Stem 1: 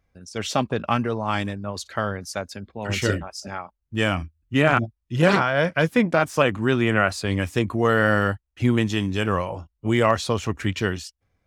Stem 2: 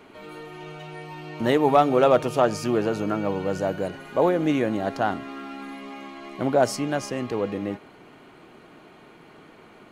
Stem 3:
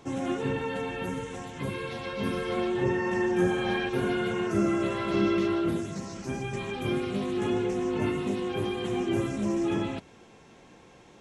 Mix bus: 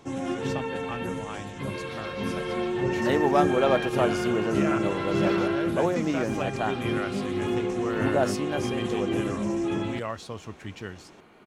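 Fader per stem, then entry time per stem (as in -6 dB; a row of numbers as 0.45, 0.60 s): -14.0, -5.0, 0.0 dB; 0.00, 1.60, 0.00 s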